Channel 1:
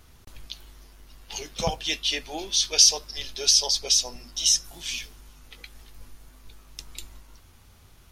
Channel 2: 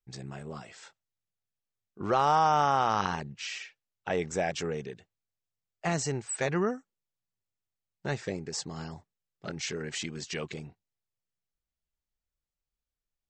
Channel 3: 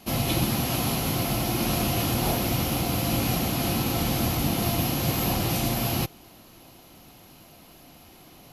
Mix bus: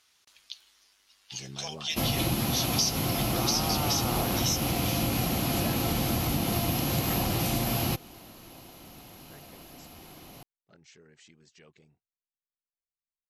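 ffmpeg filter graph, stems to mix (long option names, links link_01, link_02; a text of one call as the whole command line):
ffmpeg -i stem1.wav -i stem2.wav -i stem3.wav -filter_complex "[0:a]bandpass=frequency=4500:width_type=q:width=0.64:csg=0,volume=-3dB,asplit=2[link_01][link_02];[1:a]alimiter=limit=-20dB:level=0:latency=1,adelay=1250,volume=-2dB[link_03];[2:a]adelay=1900,volume=1.5dB[link_04];[link_02]apad=whole_len=641312[link_05];[link_03][link_05]sidechaingate=range=-19dB:threshold=-58dB:ratio=16:detection=peak[link_06];[link_01][link_06][link_04]amix=inputs=3:normalize=0,acompressor=threshold=-25dB:ratio=3" out.wav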